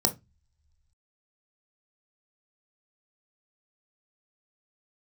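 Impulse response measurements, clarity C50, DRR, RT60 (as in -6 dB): 17.0 dB, 6.5 dB, no single decay rate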